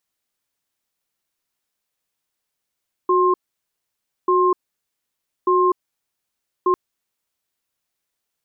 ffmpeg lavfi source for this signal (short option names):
-f lavfi -i "aevalsrc='0.158*(sin(2*PI*366*t)+sin(2*PI*1060*t))*clip(min(mod(t,1.19),0.25-mod(t,1.19))/0.005,0,1)':d=3.65:s=44100"